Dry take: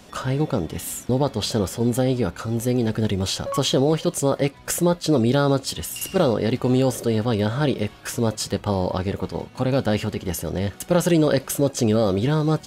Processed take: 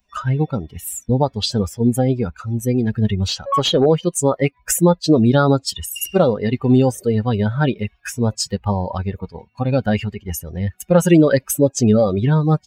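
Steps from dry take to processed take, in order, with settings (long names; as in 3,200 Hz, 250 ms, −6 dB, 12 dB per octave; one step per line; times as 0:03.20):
spectral dynamics exaggerated over time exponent 2
0:03.28–0:03.86: mid-hump overdrive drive 11 dB, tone 1,900 Hz, clips at −12.5 dBFS
level +9 dB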